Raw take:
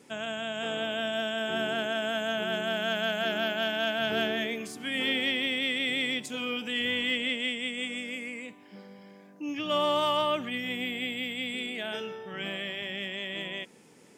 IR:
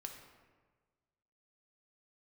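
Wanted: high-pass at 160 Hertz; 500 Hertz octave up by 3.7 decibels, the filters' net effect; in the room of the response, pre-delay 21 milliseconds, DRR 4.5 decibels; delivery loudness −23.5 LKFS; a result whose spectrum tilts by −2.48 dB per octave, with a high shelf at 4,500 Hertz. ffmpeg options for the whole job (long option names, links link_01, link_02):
-filter_complex "[0:a]highpass=160,equalizer=frequency=500:width_type=o:gain=5,highshelf=frequency=4500:gain=7,asplit=2[link_01][link_02];[1:a]atrim=start_sample=2205,adelay=21[link_03];[link_02][link_03]afir=irnorm=-1:irlink=0,volume=-1dB[link_04];[link_01][link_04]amix=inputs=2:normalize=0,volume=3dB"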